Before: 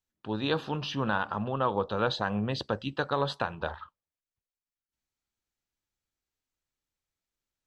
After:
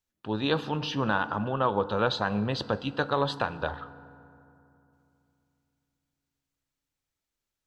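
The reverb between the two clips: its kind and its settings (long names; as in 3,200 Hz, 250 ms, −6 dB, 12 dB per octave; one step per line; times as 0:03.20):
feedback delay network reverb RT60 2.8 s, low-frequency decay 1.35×, high-frequency decay 0.45×, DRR 15 dB
level +2 dB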